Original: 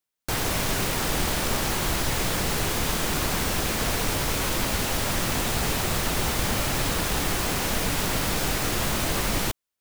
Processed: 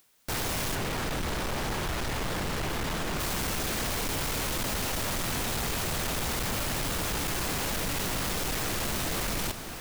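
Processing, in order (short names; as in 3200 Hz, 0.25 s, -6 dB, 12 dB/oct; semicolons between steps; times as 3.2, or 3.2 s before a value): diffused feedback echo 0.615 s, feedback 63%, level -15.5 dB; upward compressor, threshold -48 dBFS; 0.75–3.2 high shelf 4400 Hz -10.5 dB; overloaded stage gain 28.5 dB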